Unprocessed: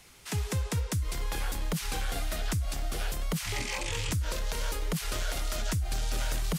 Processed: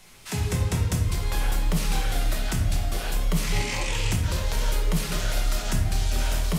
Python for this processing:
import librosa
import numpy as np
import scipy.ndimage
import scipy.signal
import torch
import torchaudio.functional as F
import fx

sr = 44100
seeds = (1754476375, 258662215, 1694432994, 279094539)

y = fx.room_shoebox(x, sr, seeds[0], volume_m3=220.0, walls='mixed', distance_m=1.1)
y = F.gain(torch.from_numpy(y), 1.5).numpy()